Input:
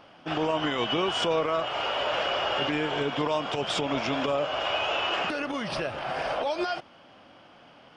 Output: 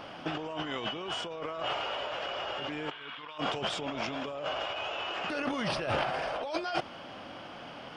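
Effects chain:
0:02.91–0:03.38: flat-topped bell 2,100 Hz +15.5 dB 2.4 octaves
compressor whose output falls as the input rises −36 dBFS, ratio −1

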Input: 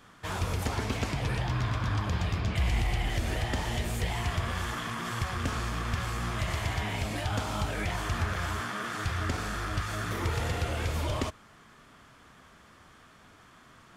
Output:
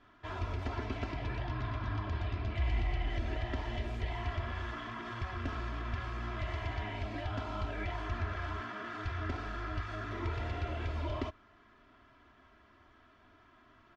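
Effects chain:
high-frequency loss of the air 230 metres
comb filter 3 ms, depth 73%
level −7 dB

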